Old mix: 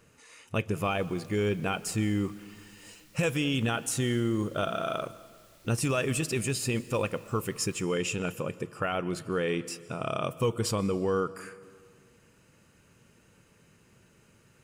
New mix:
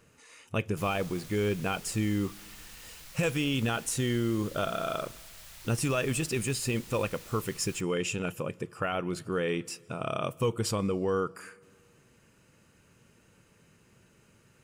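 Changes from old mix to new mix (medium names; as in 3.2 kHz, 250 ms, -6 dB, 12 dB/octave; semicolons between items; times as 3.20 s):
speech: send -9.0 dB; background +11.5 dB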